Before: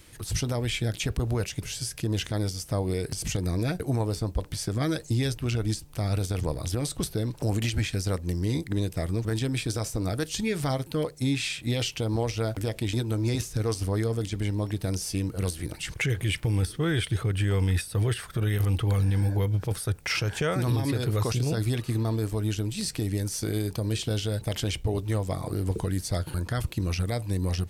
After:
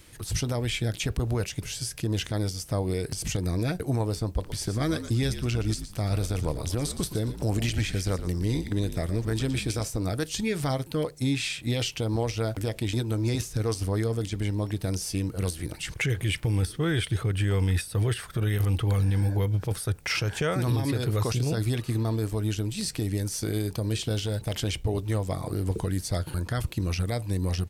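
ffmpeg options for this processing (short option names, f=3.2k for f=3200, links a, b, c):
-filter_complex "[0:a]asplit=3[a][b][c];[a]afade=t=out:st=4.42:d=0.02[d];[b]asplit=4[e][f][g][h];[f]adelay=117,afreqshift=-61,volume=-11dB[i];[g]adelay=234,afreqshift=-122,volume=-21.5dB[j];[h]adelay=351,afreqshift=-183,volume=-31.9dB[k];[e][i][j][k]amix=inputs=4:normalize=0,afade=t=in:st=4.42:d=0.02,afade=t=out:st=9.84:d=0.02[l];[c]afade=t=in:st=9.84:d=0.02[m];[d][l][m]amix=inputs=3:normalize=0,asettb=1/sr,asplit=3[n][o][p];[n]atrim=end=24.154[q];[o]atrim=start=24.15:end=24.56,asetpts=PTS-STARTPTS,afade=t=in:d=0.004:c=qsin,afade=t=out:st=0.406:d=0.004:c=qsin,asoftclip=type=hard:threshold=-22dB[r];[p]atrim=start=24.556[s];[q][r]acrossfade=d=0.004:c1=hsin:c2=qsin[t];[t][s]acrossfade=d=0.004:c1=qsin:c2=hsin"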